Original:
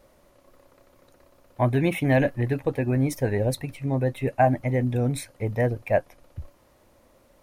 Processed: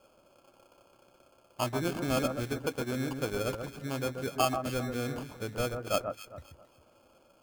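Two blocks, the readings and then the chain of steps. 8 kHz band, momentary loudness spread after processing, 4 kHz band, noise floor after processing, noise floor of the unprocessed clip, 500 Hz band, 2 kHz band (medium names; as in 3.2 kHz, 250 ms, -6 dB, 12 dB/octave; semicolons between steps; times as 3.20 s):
-0.5 dB, 9 LU, +3.5 dB, -65 dBFS, -60 dBFS, -8.0 dB, -7.0 dB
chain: local Wiener filter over 9 samples; high-pass 300 Hz 6 dB/octave; in parallel at +1 dB: compression, threshold -35 dBFS, peak gain reduction 18.5 dB; on the sum: sample-and-hold 23×; echo whose repeats swap between lows and highs 134 ms, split 1.6 kHz, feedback 51%, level -6 dB; trim -8.5 dB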